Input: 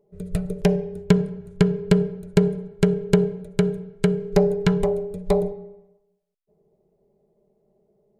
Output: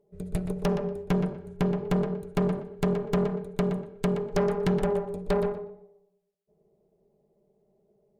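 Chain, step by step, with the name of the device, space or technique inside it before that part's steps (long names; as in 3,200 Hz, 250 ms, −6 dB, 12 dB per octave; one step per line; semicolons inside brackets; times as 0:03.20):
rockabilly slapback (tube saturation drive 20 dB, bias 0.65; tape delay 121 ms, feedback 21%, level −6 dB, low-pass 3,200 Hz)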